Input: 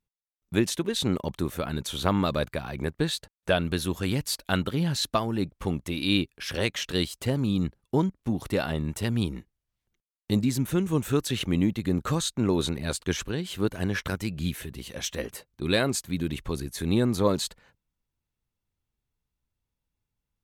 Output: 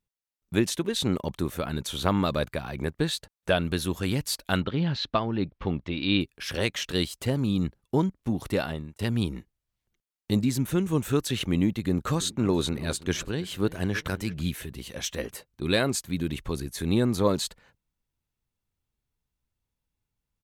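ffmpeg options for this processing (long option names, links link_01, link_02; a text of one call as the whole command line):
ffmpeg -i in.wav -filter_complex "[0:a]asettb=1/sr,asplit=3[link_01][link_02][link_03];[link_01]atrim=end=4.604[link_04];[link_02]atrim=start=4.6:end=6.21,asetpts=PTS-STARTPTS,afade=type=in:duration=0.004:curve=qsin,afade=type=out:start_time=1.606:duration=0.004:curve=qsin,lowpass=frequency=4200:width=0.5412,lowpass=frequency=4200:width=1.3066[link_05];[link_03]atrim=start=6.206[link_06];[link_04][link_05]acrossfade=duration=0.004:curve1=hsin:curve2=qsin[link_07];[link_07][link_06]acrossfade=duration=0.004:curve1=qsin:curve2=hsin,asplit=3[link_08][link_09][link_10];[link_08]afade=type=out:start_time=12.15:duration=0.02[link_11];[link_09]asplit=2[link_12][link_13];[link_13]adelay=329,lowpass=frequency=1900:poles=1,volume=-17.5dB,asplit=2[link_14][link_15];[link_15]adelay=329,lowpass=frequency=1900:poles=1,volume=0.32,asplit=2[link_16][link_17];[link_17]adelay=329,lowpass=frequency=1900:poles=1,volume=0.32[link_18];[link_12][link_14][link_16][link_18]amix=inputs=4:normalize=0,afade=type=in:start_time=12.15:duration=0.02,afade=type=out:start_time=14.41:duration=0.02[link_19];[link_10]afade=type=in:start_time=14.41:duration=0.02[link_20];[link_11][link_19][link_20]amix=inputs=3:normalize=0,asplit=2[link_21][link_22];[link_21]atrim=end=8.99,asetpts=PTS-STARTPTS,afade=type=out:start_time=8.59:duration=0.4[link_23];[link_22]atrim=start=8.99,asetpts=PTS-STARTPTS,afade=type=in:duration=0.004:curve=hsin[link_24];[link_23][link_24]concat=n=2:v=0:a=1" out.wav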